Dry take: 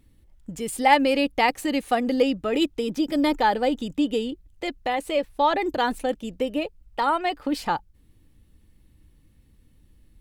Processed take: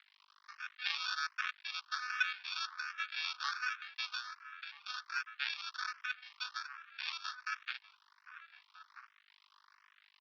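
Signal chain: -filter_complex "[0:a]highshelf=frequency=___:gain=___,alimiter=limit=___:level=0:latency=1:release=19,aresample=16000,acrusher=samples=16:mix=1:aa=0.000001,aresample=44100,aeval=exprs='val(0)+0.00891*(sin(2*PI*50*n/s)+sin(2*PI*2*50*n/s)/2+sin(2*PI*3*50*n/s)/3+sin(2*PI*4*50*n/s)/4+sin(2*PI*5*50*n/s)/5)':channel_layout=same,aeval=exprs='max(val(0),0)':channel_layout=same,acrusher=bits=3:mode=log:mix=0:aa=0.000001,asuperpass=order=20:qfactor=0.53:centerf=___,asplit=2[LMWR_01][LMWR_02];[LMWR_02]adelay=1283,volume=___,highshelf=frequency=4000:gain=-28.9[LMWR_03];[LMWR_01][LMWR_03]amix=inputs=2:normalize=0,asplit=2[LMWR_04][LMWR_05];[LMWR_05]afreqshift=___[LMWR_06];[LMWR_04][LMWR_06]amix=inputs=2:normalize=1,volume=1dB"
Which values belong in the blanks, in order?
3400, -11.5, -9dB, 2400, -9dB, 1.3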